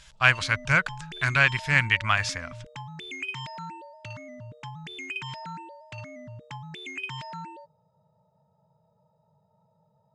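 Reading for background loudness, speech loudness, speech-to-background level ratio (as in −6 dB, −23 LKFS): −38.0 LKFS, −23.0 LKFS, 15.0 dB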